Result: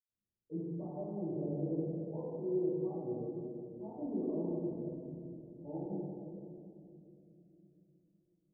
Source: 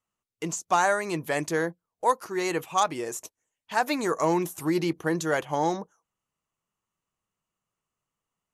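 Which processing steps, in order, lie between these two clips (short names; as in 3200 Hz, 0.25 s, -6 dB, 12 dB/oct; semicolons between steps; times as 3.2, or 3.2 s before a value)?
compressor, threshold -26 dBFS, peak gain reduction 9.5 dB; Gaussian blur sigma 17 samples; 4.39–5.57 flipped gate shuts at -35 dBFS, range -25 dB; reverb RT60 2.7 s, pre-delay 76 ms, DRR -60 dB; gain +2.5 dB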